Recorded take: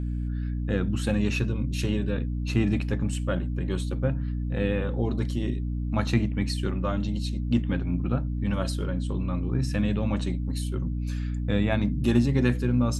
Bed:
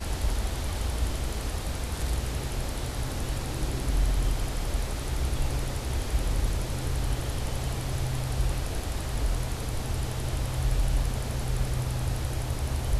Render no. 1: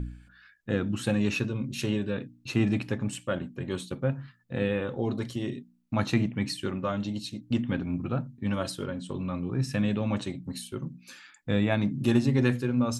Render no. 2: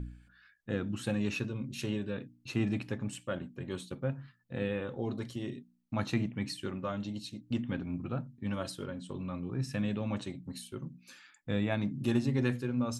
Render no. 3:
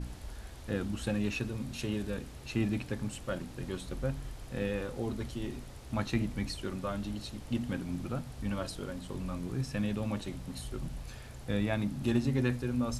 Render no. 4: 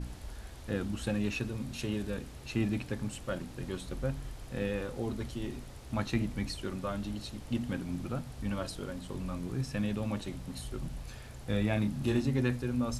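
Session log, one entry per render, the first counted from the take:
hum removal 60 Hz, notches 5
level −6 dB
mix in bed −16.5 dB
0:11.45–0:12.22: double-tracking delay 28 ms −6.5 dB

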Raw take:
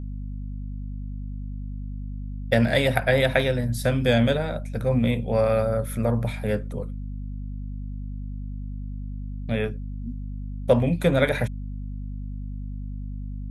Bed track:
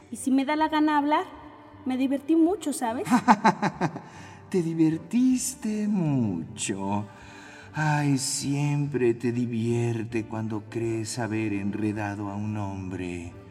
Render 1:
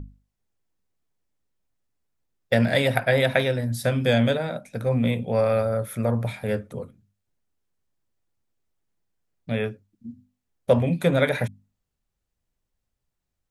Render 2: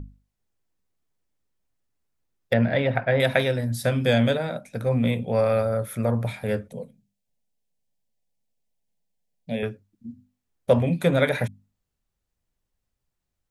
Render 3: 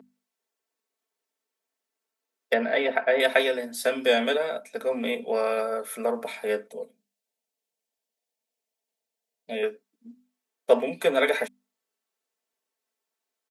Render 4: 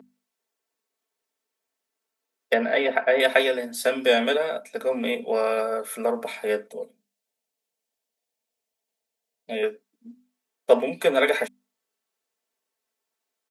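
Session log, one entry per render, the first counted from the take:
mains-hum notches 50/100/150/200/250 Hz
0:02.53–0:03.20: high-frequency loss of the air 370 metres; 0:06.68–0:09.63: phaser with its sweep stopped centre 340 Hz, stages 6
high-pass filter 330 Hz 24 dB per octave; comb filter 4.5 ms, depth 65%
level +2 dB

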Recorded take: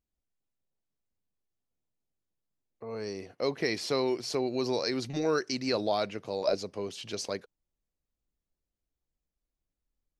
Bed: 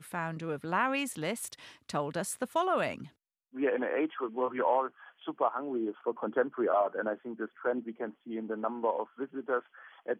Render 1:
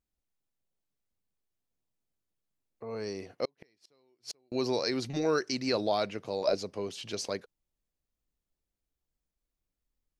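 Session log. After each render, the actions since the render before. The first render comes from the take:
0:03.45–0:04.52: gate with flip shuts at −26 dBFS, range −40 dB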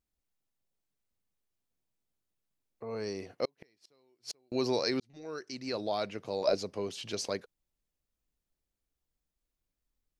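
0:05.00–0:06.49: fade in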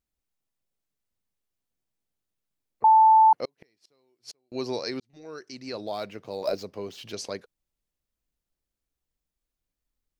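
0:02.84–0:03.33: beep over 880 Hz −12.5 dBFS
0:04.30–0:05.13: expander for the loud parts, over −38 dBFS
0:05.87–0:07.12: running median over 5 samples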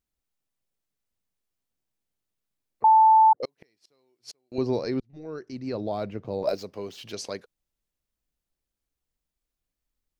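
0:03.01–0:03.43: spectral envelope exaggerated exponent 3
0:04.58–0:06.49: spectral tilt −3.5 dB per octave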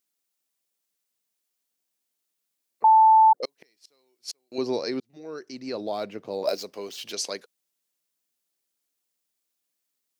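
high-pass filter 250 Hz 12 dB per octave
high-shelf EQ 3,000 Hz +10 dB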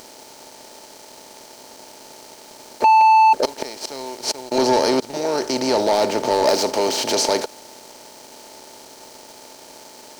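compressor on every frequency bin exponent 0.4
leveller curve on the samples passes 2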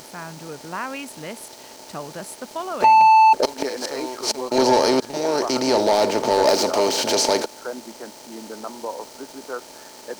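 mix in bed −0.5 dB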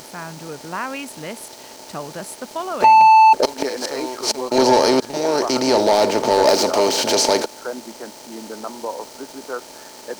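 level +2.5 dB

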